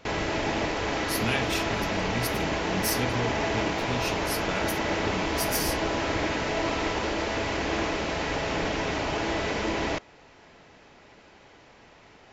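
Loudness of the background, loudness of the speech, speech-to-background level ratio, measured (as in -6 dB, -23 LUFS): -28.0 LUFS, -32.5 LUFS, -4.5 dB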